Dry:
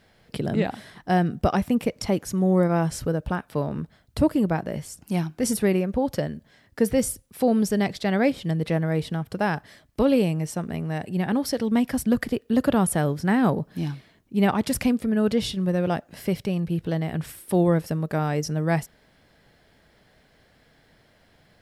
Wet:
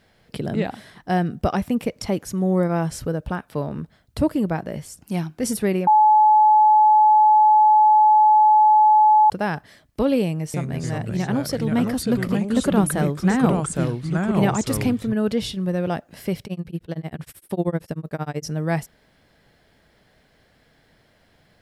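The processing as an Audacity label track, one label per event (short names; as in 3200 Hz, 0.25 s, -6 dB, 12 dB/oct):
5.870000	9.300000	bleep 856 Hz -10.5 dBFS
10.240000	15.130000	echoes that change speed 0.298 s, each echo -3 st, echoes 2
16.450000	18.460000	tremolo 13 Hz, depth 99%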